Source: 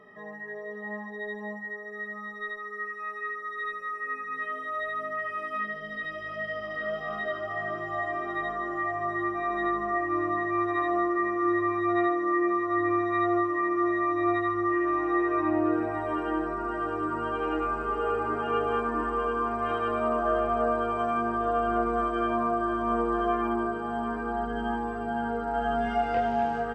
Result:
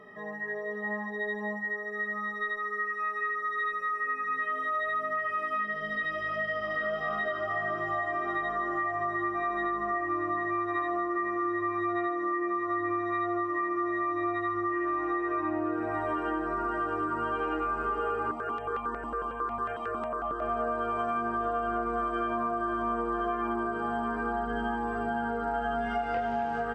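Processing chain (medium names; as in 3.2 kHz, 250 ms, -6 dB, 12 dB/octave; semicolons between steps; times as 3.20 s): dynamic bell 1.4 kHz, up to +4 dB, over -44 dBFS, Q 1.3; compression, threshold -30 dBFS, peak gain reduction 10 dB; 18.31–20.42 s: stepped phaser 11 Hz 420–1600 Hz; trim +2.5 dB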